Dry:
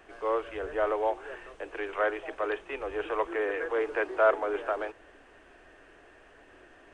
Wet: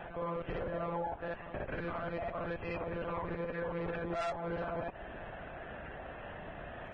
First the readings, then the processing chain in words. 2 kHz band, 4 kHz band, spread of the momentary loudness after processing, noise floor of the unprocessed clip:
-8.5 dB, n/a, 9 LU, -56 dBFS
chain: bell 730 Hz +6.5 dB 0.73 oct; level quantiser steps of 19 dB; monotone LPC vocoder at 8 kHz 170 Hz; reverse echo 58 ms -4 dB; tube stage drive 28 dB, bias 0.5; high shelf 2200 Hz -4.5 dB; compressor 6:1, threshold -45 dBFS, peak gain reduction 15 dB; limiter -42 dBFS, peak gain reduction 8.5 dB; gain +12.5 dB; Vorbis 16 kbps 22050 Hz

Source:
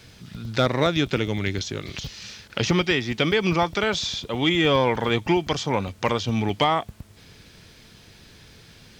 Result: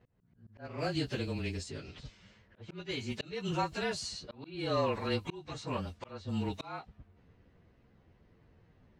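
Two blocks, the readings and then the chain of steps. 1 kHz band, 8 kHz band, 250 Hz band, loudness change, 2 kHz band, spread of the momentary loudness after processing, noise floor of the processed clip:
-14.0 dB, -12.0 dB, -13.5 dB, -13.5 dB, -16.0 dB, 16 LU, -66 dBFS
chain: inharmonic rescaling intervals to 108%; auto swell 0.358 s; low-pass opened by the level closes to 1100 Hz, open at -25.5 dBFS; gain -8.5 dB

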